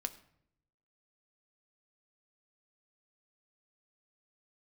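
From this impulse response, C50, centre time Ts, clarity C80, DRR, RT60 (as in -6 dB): 15.5 dB, 6 ms, 18.0 dB, 7.5 dB, 0.70 s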